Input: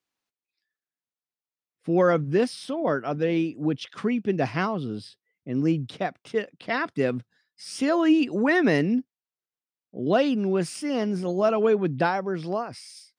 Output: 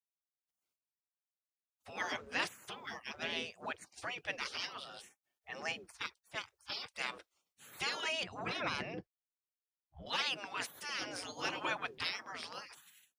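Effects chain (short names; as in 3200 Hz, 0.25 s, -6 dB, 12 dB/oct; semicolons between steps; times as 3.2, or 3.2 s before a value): spectral gate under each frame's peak -25 dB weak; 4.84–5.81 small resonant body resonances 810/1800 Hz, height 10 dB; 8.23–10.06 RIAA curve playback; gain +4 dB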